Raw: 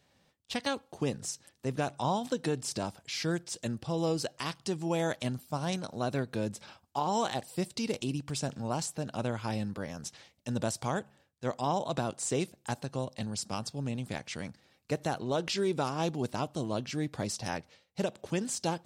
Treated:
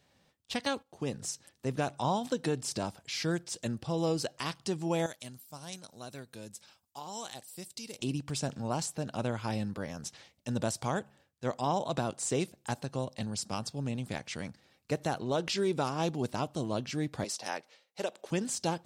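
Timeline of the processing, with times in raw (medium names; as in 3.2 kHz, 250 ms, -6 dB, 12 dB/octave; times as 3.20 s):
0.83–1.23 s: fade in, from -12.5 dB
5.06–7.99 s: pre-emphasis filter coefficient 0.8
17.24–18.31 s: high-pass 400 Hz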